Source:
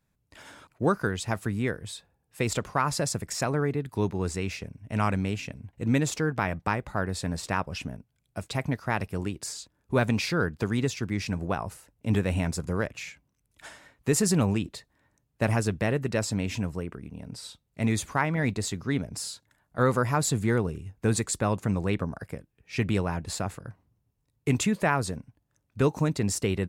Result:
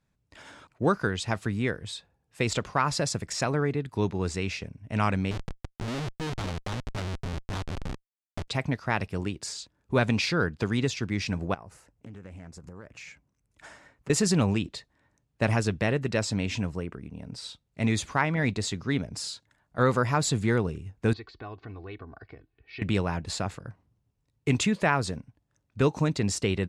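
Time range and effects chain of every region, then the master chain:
0:05.31–0:08.48: head-to-tape spacing loss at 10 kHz 33 dB + comparator with hysteresis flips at −36.5 dBFS
0:11.54–0:14.10: parametric band 3,500 Hz −6 dB 0.9 octaves + downward compressor 8 to 1, threshold −41 dBFS + highs frequency-modulated by the lows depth 0.28 ms
0:21.13–0:22.82: comb filter 2.7 ms, depth 76% + downward compressor 2 to 1, threshold −48 dBFS + elliptic low-pass filter 4,500 Hz, stop band 60 dB
whole clip: low-pass filter 7,600 Hz 12 dB per octave; dynamic equaliser 3,600 Hz, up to +4 dB, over −48 dBFS, Q 0.87

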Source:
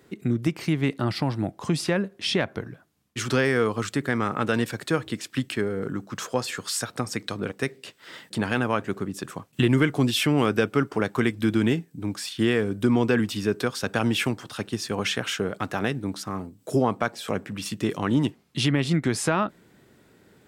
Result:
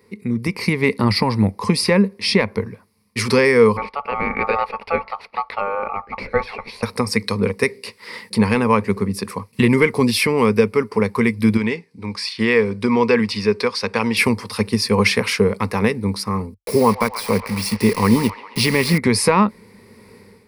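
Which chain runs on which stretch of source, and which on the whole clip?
0:03.77–0:06.83: high-pass filter 56 Hz + ring modulation 1,000 Hz + high-frequency loss of the air 410 metres
0:11.57–0:14.17: low-pass filter 5,500 Hz + low-shelf EQ 370 Hz −11.5 dB
0:16.54–0:18.98: bit-depth reduction 6 bits, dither none + delay with a band-pass on its return 136 ms, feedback 62%, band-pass 1,500 Hz, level −10.5 dB
whole clip: EQ curve with evenly spaced ripples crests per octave 0.89, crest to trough 14 dB; automatic gain control; level −1 dB

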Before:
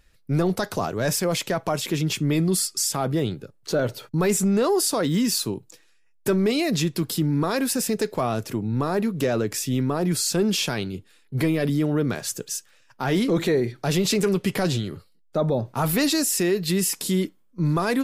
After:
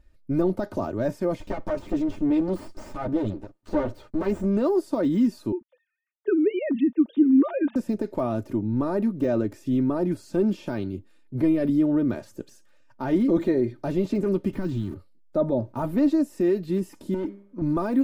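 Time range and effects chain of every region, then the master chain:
0:01.40–0:04.57: lower of the sound and its delayed copy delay 9.8 ms + parametric band 12,000 Hz −12.5 dB 0.34 octaves + one half of a high-frequency compander encoder only
0:05.52–0:07.76: three sine waves on the formant tracks + single-tap delay 939 ms −21.5 dB
0:14.53–0:14.94: converter with a step at zero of −32.5 dBFS + parametric band 570 Hz −14.5 dB 1 octave
0:17.14–0:17.62: hum removal 199.5 Hz, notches 12 + mid-hump overdrive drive 27 dB, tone 1,100 Hz, clips at −14 dBFS + downward compressor 2.5 to 1, threshold −29 dBFS
whole clip: de-essing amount 85%; tilt shelving filter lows +8 dB, about 1,200 Hz; comb filter 3.3 ms, depth 62%; level −7.5 dB

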